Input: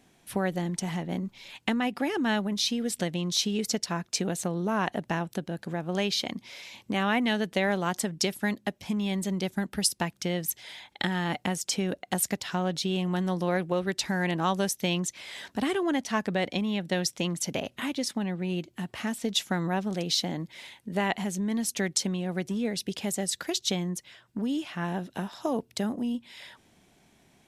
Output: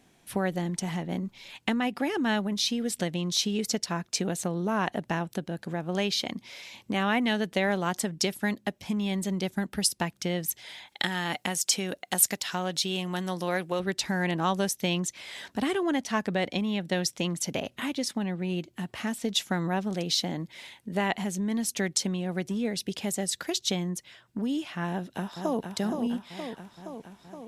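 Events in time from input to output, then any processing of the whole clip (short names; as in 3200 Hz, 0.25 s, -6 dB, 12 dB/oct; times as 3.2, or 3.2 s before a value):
10.87–13.8 tilt +2 dB/oct
24.89–25.72 echo throw 0.47 s, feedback 70%, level -6 dB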